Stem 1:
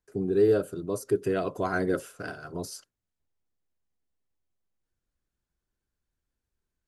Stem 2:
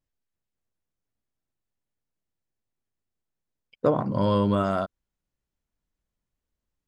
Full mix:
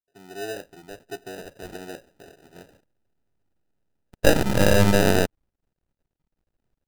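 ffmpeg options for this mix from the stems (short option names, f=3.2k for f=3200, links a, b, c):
-filter_complex "[0:a]lowshelf=f=140:g=-8.5,volume=-18.5dB[a];[1:a]aeval=exprs='max(val(0),0)':c=same,adelay=400,volume=2.5dB[b];[a][b]amix=inputs=2:normalize=0,highshelf=f=6.3k:g=-9,dynaudnorm=f=100:g=7:m=9dB,acrusher=samples=40:mix=1:aa=0.000001"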